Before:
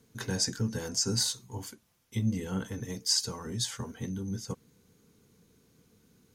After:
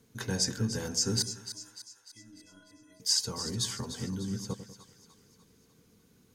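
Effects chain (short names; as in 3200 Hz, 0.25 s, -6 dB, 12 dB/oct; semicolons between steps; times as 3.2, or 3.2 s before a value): 1.22–3 metallic resonator 300 Hz, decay 0.44 s, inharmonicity 0.03; split-band echo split 850 Hz, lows 97 ms, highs 0.298 s, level -11 dB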